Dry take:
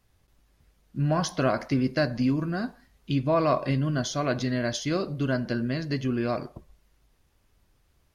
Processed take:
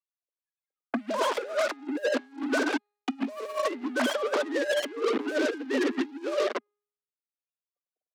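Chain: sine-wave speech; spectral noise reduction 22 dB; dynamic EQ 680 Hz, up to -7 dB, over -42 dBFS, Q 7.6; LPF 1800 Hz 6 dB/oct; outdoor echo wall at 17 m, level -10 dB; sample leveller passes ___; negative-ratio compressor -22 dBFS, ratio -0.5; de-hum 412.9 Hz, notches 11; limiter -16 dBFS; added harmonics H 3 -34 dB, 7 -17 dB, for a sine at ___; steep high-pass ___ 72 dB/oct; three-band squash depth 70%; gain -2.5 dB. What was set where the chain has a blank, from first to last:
5, -16 dBFS, 230 Hz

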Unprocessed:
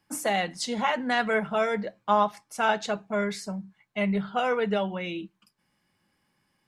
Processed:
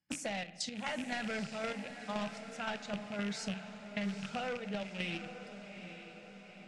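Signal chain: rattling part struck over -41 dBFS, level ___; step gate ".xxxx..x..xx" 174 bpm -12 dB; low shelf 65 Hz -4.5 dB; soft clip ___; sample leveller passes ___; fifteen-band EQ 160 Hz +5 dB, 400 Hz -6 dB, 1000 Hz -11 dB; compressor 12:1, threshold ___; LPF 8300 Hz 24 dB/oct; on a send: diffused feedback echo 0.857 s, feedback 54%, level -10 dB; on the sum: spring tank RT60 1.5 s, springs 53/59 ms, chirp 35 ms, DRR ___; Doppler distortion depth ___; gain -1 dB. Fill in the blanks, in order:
-22 dBFS, -16.5 dBFS, 1, -34 dBFS, 15 dB, 0.18 ms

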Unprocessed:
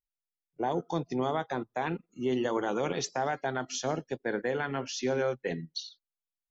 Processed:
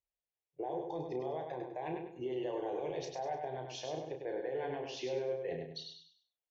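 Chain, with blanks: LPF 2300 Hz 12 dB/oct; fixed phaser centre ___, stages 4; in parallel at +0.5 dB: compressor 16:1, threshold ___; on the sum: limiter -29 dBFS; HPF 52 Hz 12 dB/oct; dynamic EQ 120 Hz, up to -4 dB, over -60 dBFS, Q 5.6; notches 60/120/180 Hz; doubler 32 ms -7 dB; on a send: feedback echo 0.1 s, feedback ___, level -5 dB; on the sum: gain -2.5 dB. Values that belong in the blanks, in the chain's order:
550 Hz, -41 dBFS, 35%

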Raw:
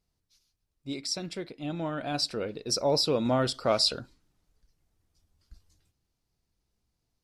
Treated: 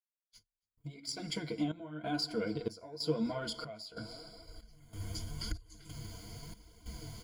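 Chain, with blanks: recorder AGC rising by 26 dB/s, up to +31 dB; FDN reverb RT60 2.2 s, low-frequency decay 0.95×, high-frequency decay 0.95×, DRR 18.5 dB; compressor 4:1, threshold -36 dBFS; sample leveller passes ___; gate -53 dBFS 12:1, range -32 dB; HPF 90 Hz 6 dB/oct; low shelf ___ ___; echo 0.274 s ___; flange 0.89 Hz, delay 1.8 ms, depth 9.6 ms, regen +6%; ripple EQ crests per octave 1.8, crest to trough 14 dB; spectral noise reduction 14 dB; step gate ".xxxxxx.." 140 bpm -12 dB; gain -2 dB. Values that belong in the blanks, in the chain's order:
1, 140 Hz, +9.5 dB, -21.5 dB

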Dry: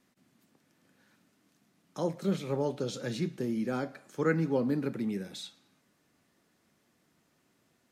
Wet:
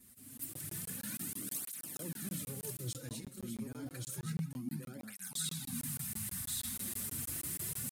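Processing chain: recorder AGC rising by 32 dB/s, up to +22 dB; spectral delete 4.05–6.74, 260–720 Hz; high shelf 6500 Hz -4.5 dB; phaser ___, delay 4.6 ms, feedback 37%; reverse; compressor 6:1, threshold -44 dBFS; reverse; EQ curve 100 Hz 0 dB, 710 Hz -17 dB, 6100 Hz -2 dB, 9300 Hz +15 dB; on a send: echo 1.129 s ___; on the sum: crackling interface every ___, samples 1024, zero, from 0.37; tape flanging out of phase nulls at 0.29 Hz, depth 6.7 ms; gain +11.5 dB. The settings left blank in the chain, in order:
1.4 Hz, -3.5 dB, 0.16 s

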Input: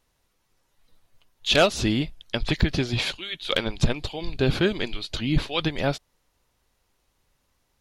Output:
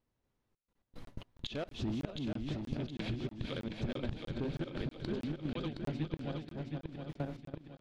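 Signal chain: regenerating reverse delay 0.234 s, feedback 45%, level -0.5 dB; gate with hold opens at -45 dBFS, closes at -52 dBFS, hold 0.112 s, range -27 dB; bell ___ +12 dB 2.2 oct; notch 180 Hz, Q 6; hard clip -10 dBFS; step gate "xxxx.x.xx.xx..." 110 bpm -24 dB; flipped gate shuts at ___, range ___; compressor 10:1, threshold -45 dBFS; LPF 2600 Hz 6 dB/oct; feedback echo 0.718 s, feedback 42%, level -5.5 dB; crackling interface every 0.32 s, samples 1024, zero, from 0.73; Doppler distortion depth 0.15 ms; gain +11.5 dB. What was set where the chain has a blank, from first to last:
190 Hz, -26 dBFS, -28 dB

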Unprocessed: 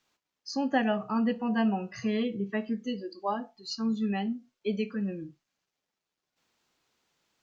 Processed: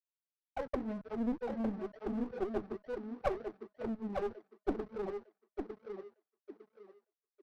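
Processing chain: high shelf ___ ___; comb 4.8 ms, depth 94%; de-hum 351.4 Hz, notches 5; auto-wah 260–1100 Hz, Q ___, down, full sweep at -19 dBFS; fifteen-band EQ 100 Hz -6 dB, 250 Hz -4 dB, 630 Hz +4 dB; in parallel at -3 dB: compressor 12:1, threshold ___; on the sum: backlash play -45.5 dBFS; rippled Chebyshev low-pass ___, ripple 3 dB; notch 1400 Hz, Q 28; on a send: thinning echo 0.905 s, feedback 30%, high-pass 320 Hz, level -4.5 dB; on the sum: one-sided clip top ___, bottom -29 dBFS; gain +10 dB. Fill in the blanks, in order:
2400 Hz, -7 dB, 20, -47 dBFS, 6000 Hz, -48 dBFS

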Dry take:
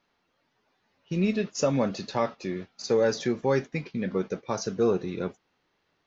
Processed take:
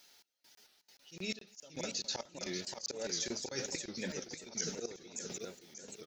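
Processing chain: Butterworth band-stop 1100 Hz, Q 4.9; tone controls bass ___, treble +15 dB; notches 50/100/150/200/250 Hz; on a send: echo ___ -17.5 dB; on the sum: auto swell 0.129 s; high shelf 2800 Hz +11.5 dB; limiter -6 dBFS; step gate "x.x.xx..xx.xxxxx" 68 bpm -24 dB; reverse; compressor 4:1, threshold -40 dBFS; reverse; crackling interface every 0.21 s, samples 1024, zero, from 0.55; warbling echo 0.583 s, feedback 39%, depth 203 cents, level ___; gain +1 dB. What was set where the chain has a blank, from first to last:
-6 dB, 0.236 s, -5.5 dB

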